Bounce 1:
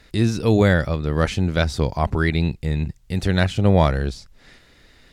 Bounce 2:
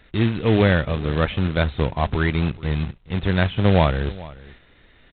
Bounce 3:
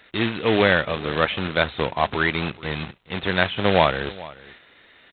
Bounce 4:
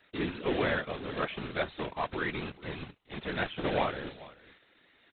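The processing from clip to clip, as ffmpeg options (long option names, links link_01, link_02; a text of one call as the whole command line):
ffmpeg -i in.wav -af "aresample=8000,acrusher=bits=3:mode=log:mix=0:aa=0.000001,aresample=44100,aecho=1:1:428:0.106,volume=-1dB" out.wav
ffmpeg -i in.wav -af "highpass=frequency=620:poles=1,volume=5dB" out.wav
ffmpeg -i in.wav -filter_complex "[0:a]equalizer=frequency=310:width=3.8:gain=5.5,afftfilt=real='hypot(re,im)*cos(2*PI*random(0))':imag='hypot(re,im)*sin(2*PI*random(1))':win_size=512:overlap=0.75,acrossover=split=4000[link_01][link_02];[link_02]acompressor=threshold=-53dB:ratio=4:attack=1:release=60[link_03];[link_01][link_03]amix=inputs=2:normalize=0,volume=-6dB" out.wav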